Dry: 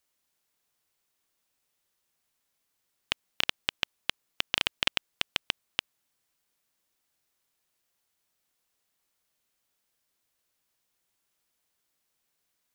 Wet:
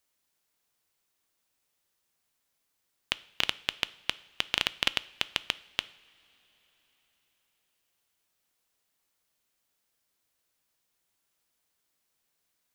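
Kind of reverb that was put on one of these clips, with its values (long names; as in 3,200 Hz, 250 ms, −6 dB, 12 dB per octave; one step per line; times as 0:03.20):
coupled-rooms reverb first 0.58 s, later 4.7 s, from −18 dB, DRR 16.5 dB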